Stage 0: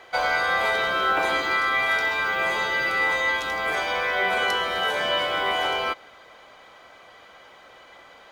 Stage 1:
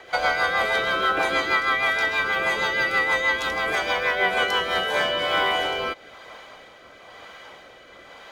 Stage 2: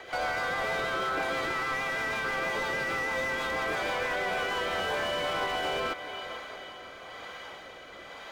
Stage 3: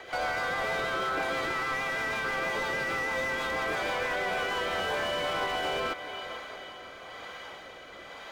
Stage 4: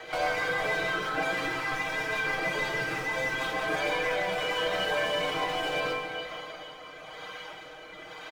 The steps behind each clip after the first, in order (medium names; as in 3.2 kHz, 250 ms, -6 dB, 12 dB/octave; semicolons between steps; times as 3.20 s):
compression 1.5:1, threshold -29 dBFS, peak gain reduction 4 dB; rotary cabinet horn 6.3 Hz, later 1 Hz, at 4.48 s; trim +7 dB
peak limiter -21 dBFS, peak gain reduction 11.5 dB; echo that smears into a reverb 456 ms, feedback 48%, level -12 dB; slew-rate limiter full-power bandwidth 57 Hz
no audible change
reverb removal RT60 2 s; comb 6.4 ms, depth 88%; plate-style reverb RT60 2.6 s, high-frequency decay 0.75×, DRR 1.5 dB